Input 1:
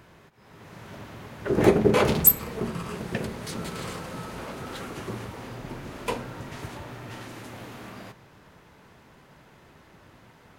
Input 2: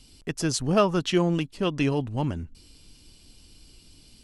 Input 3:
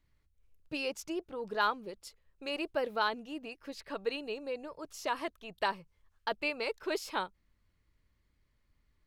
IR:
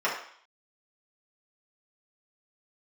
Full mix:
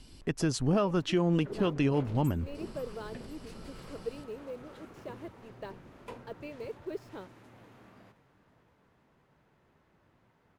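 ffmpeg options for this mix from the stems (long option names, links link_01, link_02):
-filter_complex "[0:a]alimiter=limit=-15dB:level=0:latency=1:release=389,asoftclip=type=hard:threshold=-20dB,volume=-14dB,asplit=2[link_01][link_02];[link_02]volume=-16dB[link_03];[1:a]volume=2dB[link_04];[2:a]lowshelf=frequency=640:width_type=q:width=1.5:gain=9,acrusher=bits=6:mix=0:aa=0.5,volume=-13.5dB[link_05];[link_03]aecho=0:1:520|1040|1560|2080|2600|3120|3640|4160|4680:1|0.57|0.325|0.185|0.106|0.0602|0.0343|0.0195|0.0111[link_06];[link_01][link_04][link_05][link_06]amix=inputs=4:normalize=0,highshelf=frequency=2900:gain=-8.5,alimiter=limit=-17dB:level=0:latency=1:release=313"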